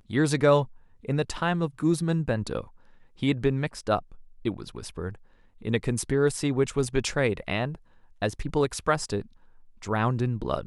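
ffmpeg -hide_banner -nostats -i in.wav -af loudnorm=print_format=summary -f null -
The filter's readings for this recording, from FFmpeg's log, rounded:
Input Integrated:    -27.6 LUFS
Input True Peak:      -8.8 dBTP
Input LRA:             3.3 LU
Input Threshold:     -38.4 LUFS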